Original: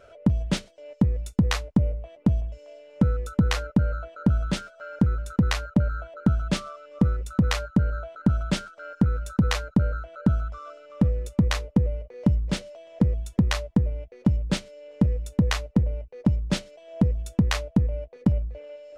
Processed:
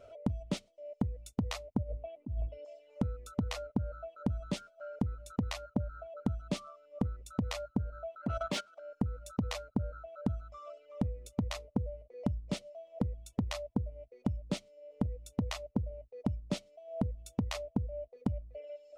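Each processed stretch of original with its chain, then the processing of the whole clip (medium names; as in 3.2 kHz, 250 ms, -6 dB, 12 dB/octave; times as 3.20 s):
1.83–2.65 s: peaking EQ 300 Hz +6.5 dB 0.58 oct + compressor with a negative ratio -27 dBFS + low-pass 3.8 kHz 24 dB/octave
8.16–8.80 s: overdrive pedal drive 21 dB, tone 3.9 kHz, clips at -9 dBFS + level held to a coarse grid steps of 13 dB
whole clip: reverb removal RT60 1.5 s; graphic EQ with 31 bands 100 Hz +6 dB, 250 Hz +6 dB, 630 Hz +7 dB, 1.6 kHz -10 dB; compression 6:1, threshold -23 dBFS; trim -6 dB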